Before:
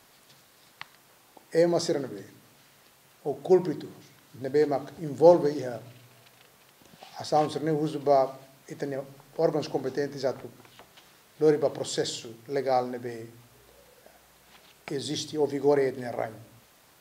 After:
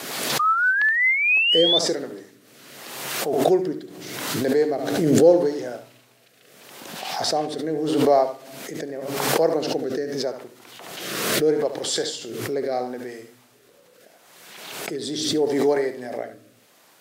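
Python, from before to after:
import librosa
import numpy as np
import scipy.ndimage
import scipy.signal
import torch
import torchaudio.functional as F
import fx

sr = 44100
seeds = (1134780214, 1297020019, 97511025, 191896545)

y = scipy.signal.sosfilt(scipy.signal.butter(2, 220.0, 'highpass', fs=sr, output='sos'), x)
y = y + 10.0 ** (-10.5 / 20.0) * np.pad(y, (int(72 * sr / 1000.0), 0))[:len(y)]
y = fx.spec_paint(y, sr, seeds[0], shape='rise', start_s=0.39, length_s=1.4, low_hz=1200.0, high_hz=3600.0, level_db=-21.0)
y = fx.rotary_switch(y, sr, hz=5.5, then_hz=0.8, switch_at_s=0.82)
y = fx.pre_swell(y, sr, db_per_s=37.0)
y = y * librosa.db_to_amplitude(4.0)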